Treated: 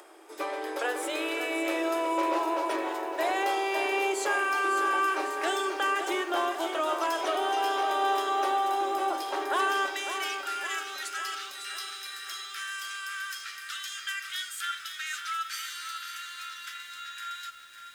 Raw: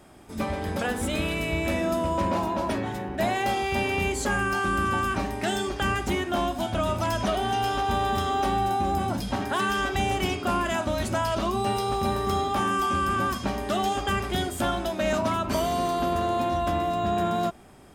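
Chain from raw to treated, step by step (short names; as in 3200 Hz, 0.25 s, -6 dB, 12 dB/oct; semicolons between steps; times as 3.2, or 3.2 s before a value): upward compressor, threshold -44 dBFS; rippled Chebyshev high-pass 310 Hz, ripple 3 dB, from 9.86 s 1300 Hz; lo-fi delay 0.553 s, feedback 55%, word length 9-bit, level -8.5 dB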